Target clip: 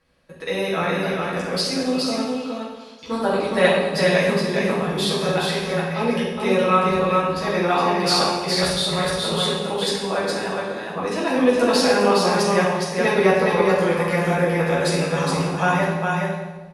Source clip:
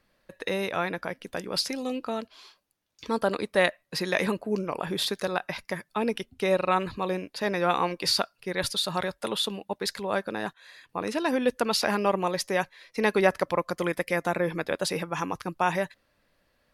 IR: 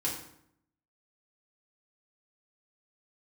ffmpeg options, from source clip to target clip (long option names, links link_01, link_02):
-filter_complex "[0:a]aecho=1:1:415:0.668[link_01];[1:a]atrim=start_sample=2205,asetrate=22932,aresample=44100[link_02];[link_01][link_02]afir=irnorm=-1:irlink=0,volume=-4dB"